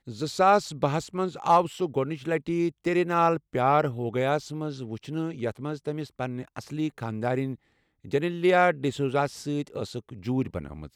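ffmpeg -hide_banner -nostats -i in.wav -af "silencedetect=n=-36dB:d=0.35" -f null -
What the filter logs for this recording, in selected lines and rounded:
silence_start: 7.55
silence_end: 8.05 | silence_duration: 0.50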